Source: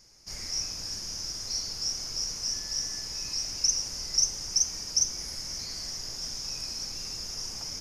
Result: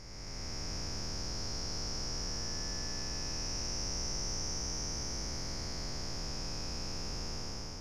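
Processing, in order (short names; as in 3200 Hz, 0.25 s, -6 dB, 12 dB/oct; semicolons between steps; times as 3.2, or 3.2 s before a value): time blur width 0.707 s; LPF 1100 Hz 6 dB/oct; gain +8.5 dB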